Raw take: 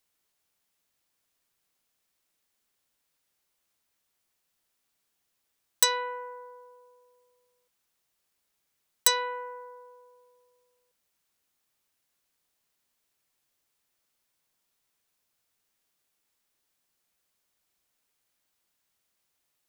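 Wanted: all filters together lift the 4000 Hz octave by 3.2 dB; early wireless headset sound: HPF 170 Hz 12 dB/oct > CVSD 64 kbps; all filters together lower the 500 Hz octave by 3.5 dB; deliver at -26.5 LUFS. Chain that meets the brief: HPF 170 Hz 12 dB/oct; bell 500 Hz -3.5 dB; bell 4000 Hz +3.5 dB; CVSD 64 kbps; gain +3 dB

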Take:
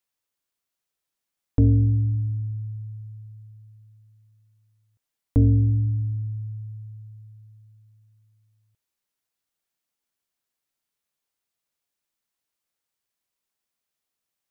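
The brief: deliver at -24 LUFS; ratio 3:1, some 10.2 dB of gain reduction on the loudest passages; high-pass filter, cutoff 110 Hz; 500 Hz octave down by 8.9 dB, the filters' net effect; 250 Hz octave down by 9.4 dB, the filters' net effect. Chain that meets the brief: HPF 110 Hz; bell 250 Hz -8.5 dB; bell 500 Hz -7.5 dB; compressor 3:1, threshold -33 dBFS; gain +13 dB

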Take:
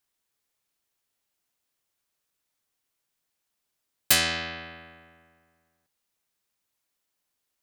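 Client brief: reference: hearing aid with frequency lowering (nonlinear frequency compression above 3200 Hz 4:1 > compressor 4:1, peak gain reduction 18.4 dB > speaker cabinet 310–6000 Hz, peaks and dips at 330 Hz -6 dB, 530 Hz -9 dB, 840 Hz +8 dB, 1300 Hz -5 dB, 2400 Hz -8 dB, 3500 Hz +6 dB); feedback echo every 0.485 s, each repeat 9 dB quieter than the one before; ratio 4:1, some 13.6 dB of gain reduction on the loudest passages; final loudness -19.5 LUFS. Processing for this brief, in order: compressor 4:1, threshold -32 dBFS; feedback echo 0.485 s, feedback 35%, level -9 dB; nonlinear frequency compression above 3200 Hz 4:1; compressor 4:1, threshold -46 dBFS; speaker cabinet 310–6000 Hz, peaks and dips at 330 Hz -6 dB, 530 Hz -9 dB, 840 Hz +8 dB, 1300 Hz -5 dB, 2400 Hz -8 dB, 3500 Hz +6 dB; gain +28 dB

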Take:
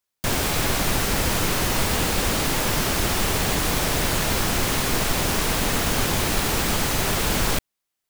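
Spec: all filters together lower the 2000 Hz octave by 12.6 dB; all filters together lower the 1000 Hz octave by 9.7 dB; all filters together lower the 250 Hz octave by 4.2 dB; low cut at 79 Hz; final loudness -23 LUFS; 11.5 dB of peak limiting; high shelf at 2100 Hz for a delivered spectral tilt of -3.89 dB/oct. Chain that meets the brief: HPF 79 Hz; bell 250 Hz -5 dB; bell 1000 Hz -8.5 dB; bell 2000 Hz -8.5 dB; high shelf 2100 Hz -8.5 dB; gain +12.5 dB; limiter -14.5 dBFS

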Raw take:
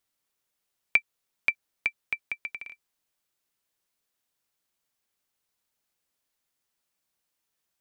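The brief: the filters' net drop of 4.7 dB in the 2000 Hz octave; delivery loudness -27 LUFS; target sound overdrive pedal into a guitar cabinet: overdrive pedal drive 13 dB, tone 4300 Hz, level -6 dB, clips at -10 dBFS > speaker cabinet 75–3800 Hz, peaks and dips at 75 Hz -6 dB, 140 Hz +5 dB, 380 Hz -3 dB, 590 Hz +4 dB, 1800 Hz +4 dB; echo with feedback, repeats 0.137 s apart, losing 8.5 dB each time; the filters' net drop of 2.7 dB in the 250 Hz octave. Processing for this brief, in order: bell 250 Hz -3.5 dB; bell 2000 Hz -6.5 dB; feedback echo 0.137 s, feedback 38%, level -8.5 dB; overdrive pedal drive 13 dB, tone 4300 Hz, level -6 dB, clips at -10 dBFS; speaker cabinet 75–3800 Hz, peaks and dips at 75 Hz -6 dB, 140 Hz +5 dB, 380 Hz -3 dB, 590 Hz +4 dB, 1800 Hz +4 dB; gain +3 dB

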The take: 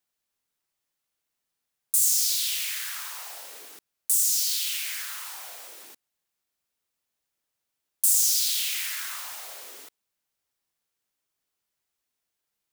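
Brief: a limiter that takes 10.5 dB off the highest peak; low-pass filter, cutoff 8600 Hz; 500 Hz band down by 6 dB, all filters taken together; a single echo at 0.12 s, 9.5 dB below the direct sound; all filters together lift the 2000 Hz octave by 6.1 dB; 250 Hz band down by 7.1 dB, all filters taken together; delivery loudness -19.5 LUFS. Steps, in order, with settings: LPF 8600 Hz; bell 250 Hz -6.5 dB; bell 500 Hz -7.5 dB; bell 2000 Hz +8 dB; limiter -23 dBFS; echo 0.12 s -9.5 dB; gain +12 dB

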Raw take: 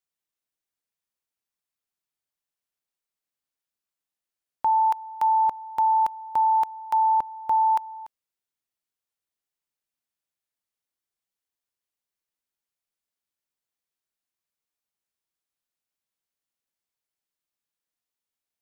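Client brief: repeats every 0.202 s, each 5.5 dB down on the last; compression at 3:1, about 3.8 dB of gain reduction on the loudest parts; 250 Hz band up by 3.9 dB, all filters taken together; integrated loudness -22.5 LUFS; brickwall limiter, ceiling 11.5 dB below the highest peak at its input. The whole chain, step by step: bell 250 Hz +5 dB; compressor 3:1, threshold -23 dBFS; limiter -27.5 dBFS; feedback echo 0.202 s, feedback 53%, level -5.5 dB; gain +12 dB

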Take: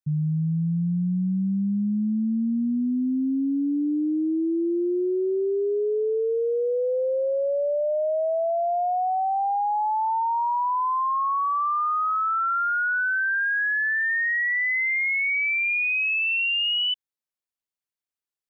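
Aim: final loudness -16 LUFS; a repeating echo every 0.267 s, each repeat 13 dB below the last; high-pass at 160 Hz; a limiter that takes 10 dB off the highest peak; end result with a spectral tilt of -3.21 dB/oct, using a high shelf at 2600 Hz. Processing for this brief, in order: HPF 160 Hz; high shelf 2600 Hz +8 dB; limiter -26.5 dBFS; feedback echo 0.267 s, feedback 22%, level -13 dB; gain +13 dB

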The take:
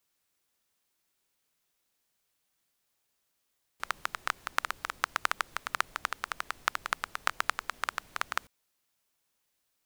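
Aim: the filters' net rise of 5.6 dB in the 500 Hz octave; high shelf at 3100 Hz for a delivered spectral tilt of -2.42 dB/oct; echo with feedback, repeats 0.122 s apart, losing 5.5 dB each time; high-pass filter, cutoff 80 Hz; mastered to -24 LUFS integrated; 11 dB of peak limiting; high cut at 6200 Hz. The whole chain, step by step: HPF 80 Hz; LPF 6200 Hz; bell 500 Hz +7.5 dB; high shelf 3100 Hz -8.5 dB; limiter -19 dBFS; feedback echo 0.122 s, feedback 53%, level -5.5 dB; gain +17 dB

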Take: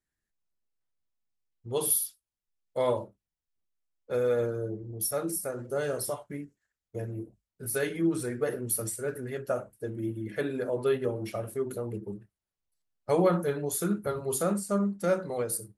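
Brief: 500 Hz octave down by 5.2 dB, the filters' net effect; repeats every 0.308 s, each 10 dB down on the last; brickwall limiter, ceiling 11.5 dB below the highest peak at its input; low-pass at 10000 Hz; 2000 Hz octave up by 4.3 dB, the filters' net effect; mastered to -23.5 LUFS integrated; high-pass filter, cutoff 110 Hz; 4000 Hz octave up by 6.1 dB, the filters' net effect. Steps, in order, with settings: HPF 110 Hz; LPF 10000 Hz; bell 500 Hz -6.5 dB; bell 2000 Hz +5 dB; bell 4000 Hz +6.5 dB; limiter -27 dBFS; feedback echo 0.308 s, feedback 32%, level -10 dB; gain +14 dB

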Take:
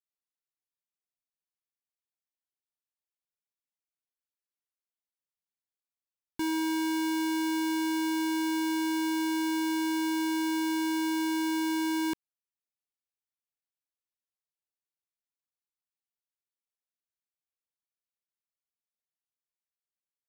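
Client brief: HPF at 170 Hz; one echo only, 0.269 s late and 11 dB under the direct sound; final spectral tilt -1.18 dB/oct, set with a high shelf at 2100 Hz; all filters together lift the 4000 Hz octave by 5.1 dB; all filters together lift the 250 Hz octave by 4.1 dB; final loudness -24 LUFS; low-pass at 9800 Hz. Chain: HPF 170 Hz; LPF 9800 Hz; bell 250 Hz +6.5 dB; high shelf 2100 Hz +3.5 dB; bell 4000 Hz +3.5 dB; echo 0.269 s -11 dB; gain +1 dB

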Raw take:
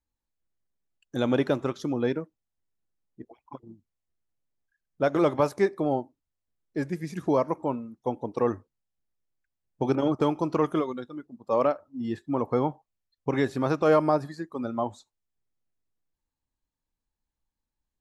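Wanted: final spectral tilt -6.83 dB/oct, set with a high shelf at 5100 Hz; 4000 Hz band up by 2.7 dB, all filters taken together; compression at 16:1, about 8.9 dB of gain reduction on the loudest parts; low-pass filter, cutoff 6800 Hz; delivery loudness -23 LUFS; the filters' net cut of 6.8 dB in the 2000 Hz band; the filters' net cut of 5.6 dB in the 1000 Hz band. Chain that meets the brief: LPF 6800 Hz; bell 1000 Hz -5.5 dB; bell 2000 Hz -8.5 dB; bell 4000 Hz +5 dB; high shelf 5100 Hz +4.5 dB; compressor 16:1, threshold -27 dBFS; gain +11.5 dB

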